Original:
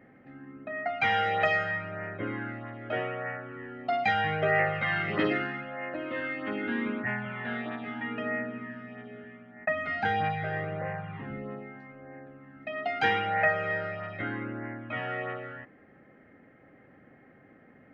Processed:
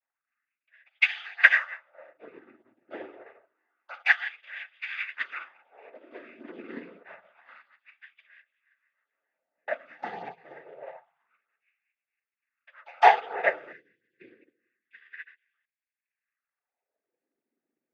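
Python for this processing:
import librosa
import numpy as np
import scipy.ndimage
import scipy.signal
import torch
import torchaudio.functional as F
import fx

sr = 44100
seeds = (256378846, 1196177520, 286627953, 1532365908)

y = fx.filter_lfo_highpass(x, sr, shape='sine', hz=0.27, low_hz=300.0, high_hz=2600.0, q=3.0)
y = fx.spec_erase(y, sr, start_s=13.72, length_s=1.81, low_hz=490.0, high_hz=1600.0)
y = fx.noise_vocoder(y, sr, seeds[0], bands=16)
y = fx.upward_expand(y, sr, threshold_db=-42.0, expansion=2.5)
y = y * 10.0 ** (5.0 / 20.0)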